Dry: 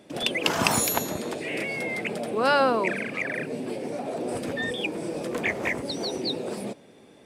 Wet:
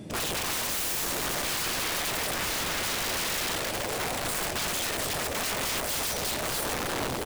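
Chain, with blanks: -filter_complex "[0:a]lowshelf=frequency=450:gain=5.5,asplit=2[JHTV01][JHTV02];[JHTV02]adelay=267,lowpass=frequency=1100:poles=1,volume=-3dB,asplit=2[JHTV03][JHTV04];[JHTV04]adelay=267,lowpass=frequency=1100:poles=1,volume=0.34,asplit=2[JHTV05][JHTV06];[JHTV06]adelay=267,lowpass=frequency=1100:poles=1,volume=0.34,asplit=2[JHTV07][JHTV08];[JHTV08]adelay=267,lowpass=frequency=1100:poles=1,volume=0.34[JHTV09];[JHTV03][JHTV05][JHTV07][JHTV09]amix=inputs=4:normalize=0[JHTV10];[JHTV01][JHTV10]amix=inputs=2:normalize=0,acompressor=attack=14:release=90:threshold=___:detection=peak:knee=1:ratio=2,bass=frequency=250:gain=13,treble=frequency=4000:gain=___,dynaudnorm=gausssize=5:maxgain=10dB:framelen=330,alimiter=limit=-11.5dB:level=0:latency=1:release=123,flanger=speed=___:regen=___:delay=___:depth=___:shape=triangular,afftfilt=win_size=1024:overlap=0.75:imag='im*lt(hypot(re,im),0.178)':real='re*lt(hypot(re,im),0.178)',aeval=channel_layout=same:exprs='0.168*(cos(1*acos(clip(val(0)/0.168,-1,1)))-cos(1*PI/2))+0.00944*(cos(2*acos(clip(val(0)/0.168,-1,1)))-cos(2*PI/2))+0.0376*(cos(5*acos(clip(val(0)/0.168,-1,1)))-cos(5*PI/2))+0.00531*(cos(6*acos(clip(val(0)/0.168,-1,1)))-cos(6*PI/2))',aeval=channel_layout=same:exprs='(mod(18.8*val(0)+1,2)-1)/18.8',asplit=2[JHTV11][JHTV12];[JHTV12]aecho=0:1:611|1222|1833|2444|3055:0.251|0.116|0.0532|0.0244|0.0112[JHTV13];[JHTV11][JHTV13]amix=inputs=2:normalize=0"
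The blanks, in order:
-26dB, 5, 0.54, -69, 6, 6.8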